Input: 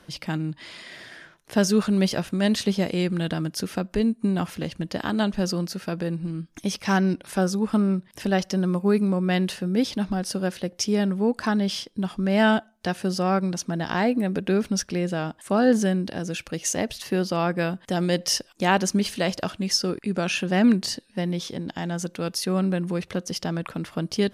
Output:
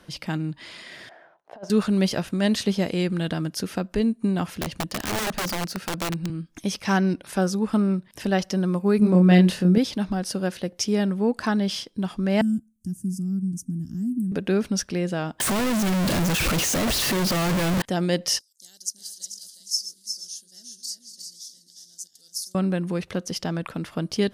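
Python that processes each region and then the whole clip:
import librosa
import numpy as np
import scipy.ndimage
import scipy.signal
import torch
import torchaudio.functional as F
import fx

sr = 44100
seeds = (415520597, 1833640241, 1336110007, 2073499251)

y = fx.chain(x, sr, fx.bandpass_q(hz=720.0, q=3.6),
    fx.over_compress(threshold_db=-35.0, ratio=-0.5), at=(1.09, 1.7))
y = fx.chain(y, sr, fx.self_delay(depth_ms=0.081),
    fx.overflow_wrap(gain_db=21.5),
    fx.band_squash(depth_pct=40), at=(4.61, 6.3))
y = fx.chain(y, sr, fx.low_shelf(hz=400.0, db=6.5),
    fx.doubler(ms=28.0, db=-3.0), at=(8.99, 9.78))
y = fx.chain(y, sr, fx.cheby2_bandstop(low_hz=470.0, high_hz=4200.0, order=4, stop_db=40),
    fx.peak_eq(hz=2800.0, db=6.0, octaves=1.5), at=(12.41, 14.32))
y = fx.chain(y, sr, fx.clip_1bit(),
    fx.low_shelf(hz=200.0, db=5.5), at=(15.4, 17.82))
y = fx.chain(y, sr, fx.reverse_delay_fb(ms=237, feedback_pct=49, wet_db=-11.5),
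    fx.cheby2_highpass(hz=2700.0, order=4, stop_db=40),
    fx.echo_single(ms=359, db=-6.0), at=(18.39, 22.55))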